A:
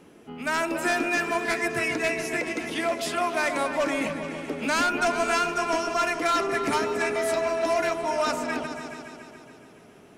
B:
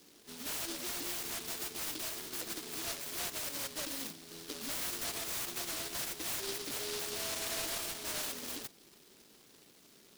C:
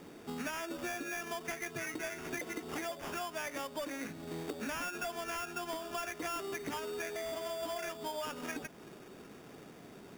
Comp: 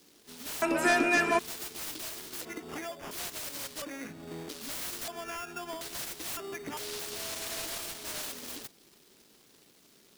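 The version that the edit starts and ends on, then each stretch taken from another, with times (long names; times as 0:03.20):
B
0:00.62–0:01.39: punch in from A
0:02.45–0:03.11: punch in from C
0:03.82–0:04.49: punch in from C
0:05.08–0:05.81: punch in from C
0:06.37–0:06.77: punch in from C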